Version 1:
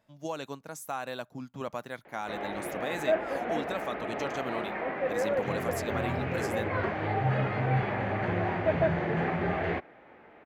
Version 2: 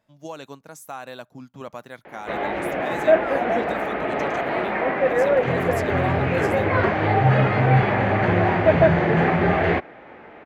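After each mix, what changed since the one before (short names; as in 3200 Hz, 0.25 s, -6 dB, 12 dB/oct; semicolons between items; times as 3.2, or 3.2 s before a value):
background +10.5 dB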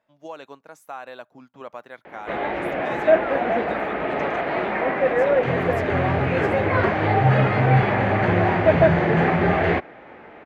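speech: add tone controls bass -13 dB, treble -12 dB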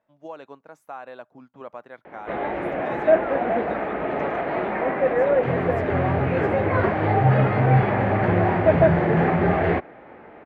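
master: add high shelf 2600 Hz -12 dB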